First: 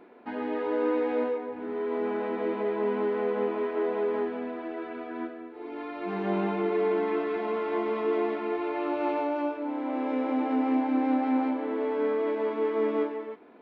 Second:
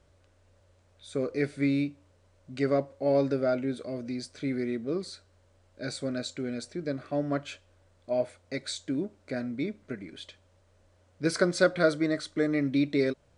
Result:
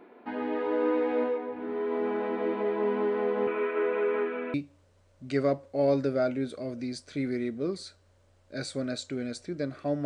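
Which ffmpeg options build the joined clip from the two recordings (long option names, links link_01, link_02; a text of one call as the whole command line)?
ffmpeg -i cue0.wav -i cue1.wav -filter_complex "[0:a]asettb=1/sr,asplit=3[link_01][link_02][link_03];[link_01]atrim=end=3.474[link_04];[link_02]atrim=start=3.47:end=4.54,asetpts=PTS-STARTPTS,afade=type=in:duration=0.004:curve=qsin,afade=type=out:start_time=1.066:duration=0.004:curve=qsin,highpass=240,equalizer=frequency=300:width_type=q:width=4:gain=-4,equalizer=frequency=480:width_type=q:width=4:gain=4,equalizer=frequency=760:width_type=q:width=4:gain=-9,equalizer=frequency=1400:width_type=q:width=4:gain=9,equalizer=frequency=2400:width_type=q:width=4:gain=10,lowpass=frequency=3700:width=0.5412,lowpass=frequency=3700:width=1.3066[link_05];[link_03]atrim=start=4.536[link_06];[link_04][link_05]acrossfade=duration=0.004:curve1=hsin:curve2=qsin[link_07];[link_07][link_06]acrossfade=duration=0.004:curve1=qsin:curve2=hsin,apad=whole_dur=10.05,atrim=end=10.05,atrim=end=4.542[link_08];[1:a]atrim=start=1.808:end=7.32[link_09];[link_08][link_09]acrossfade=duration=0.004:curve1=hsin:curve2=hsin" out.wav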